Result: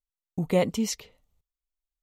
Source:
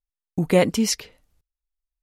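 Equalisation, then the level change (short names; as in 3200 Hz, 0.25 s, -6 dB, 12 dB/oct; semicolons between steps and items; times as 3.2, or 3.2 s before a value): thirty-one-band EQ 315 Hz -6 dB, 1600 Hz -11 dB, 2500 Hz -3 dB, 5000 Hz -6 dB, 10000 Hz -8 dB; -5.0 dB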